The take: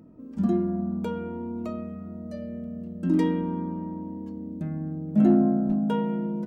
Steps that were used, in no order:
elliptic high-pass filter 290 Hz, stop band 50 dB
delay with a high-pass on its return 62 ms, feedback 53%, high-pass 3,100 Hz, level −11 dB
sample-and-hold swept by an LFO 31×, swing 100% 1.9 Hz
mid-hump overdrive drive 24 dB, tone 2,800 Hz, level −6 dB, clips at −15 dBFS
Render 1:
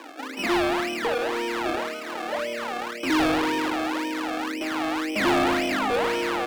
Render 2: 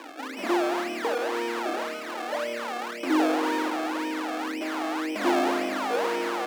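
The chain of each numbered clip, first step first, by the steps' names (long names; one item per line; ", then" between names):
delay with a high-pass on its return, then sample-and-hold swept by an LFO, then elliptic high-pass filter, then mid-hump overdrive
delay with a high-pass on its return, then sample-and-hold swept by an LFO, then mid-hump overdrive, then elliptic high-pass filter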